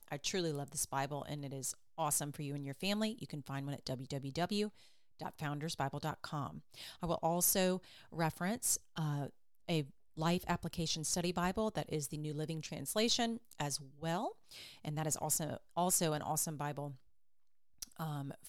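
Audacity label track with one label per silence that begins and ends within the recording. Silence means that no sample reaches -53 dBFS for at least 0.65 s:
16.970000	17.820000	silence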